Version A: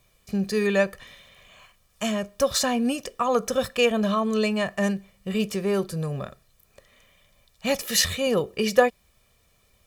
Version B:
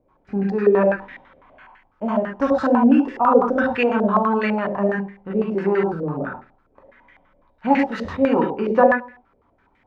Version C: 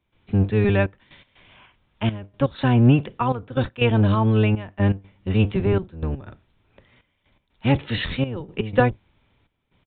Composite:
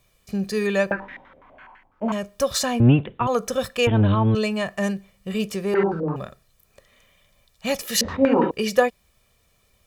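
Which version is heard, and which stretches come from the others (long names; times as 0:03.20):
A
0:00.91–0:02.12: punch in from B
0:02.80–0:03.27: punch in from C
0:03.87–0:04.35: punch in from C
0:05.74–0:06.16: punch in from B
0:08.01–0:08.51: punch in from B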